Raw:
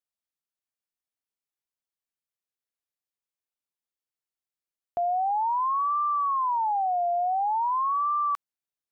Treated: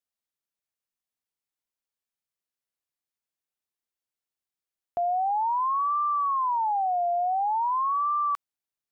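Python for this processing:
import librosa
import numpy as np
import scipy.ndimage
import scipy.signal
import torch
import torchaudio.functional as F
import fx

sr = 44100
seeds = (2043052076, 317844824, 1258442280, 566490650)

y = fx.bass_treble(x, sr, bass_db=3, treble_db=7, at=(5.0, 7.16))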